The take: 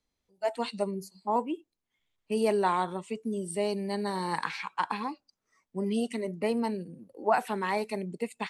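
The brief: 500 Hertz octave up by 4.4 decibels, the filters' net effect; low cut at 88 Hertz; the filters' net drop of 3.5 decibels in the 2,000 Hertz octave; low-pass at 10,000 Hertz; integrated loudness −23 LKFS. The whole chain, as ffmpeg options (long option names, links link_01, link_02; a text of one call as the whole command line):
ffmpeg -i in.wav -af "highpass=88,lowpass=10000,equalizer=frequency=500:width_type=o:gain=6,equalizer=frequency=2000:width_type=o:gain=-5,volume=6dB" out.wav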